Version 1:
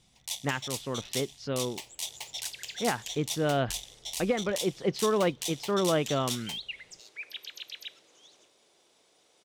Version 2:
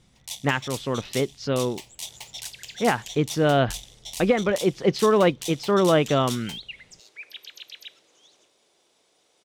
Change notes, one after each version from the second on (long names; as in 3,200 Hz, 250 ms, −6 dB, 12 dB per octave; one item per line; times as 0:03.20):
speech +7.5 dB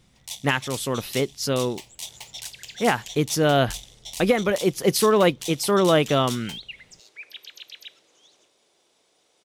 speech: remove high-frequency loss of the air 190 metres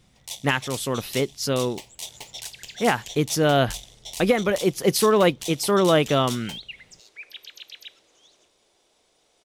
first sound: remove high-pass filter 760 Hz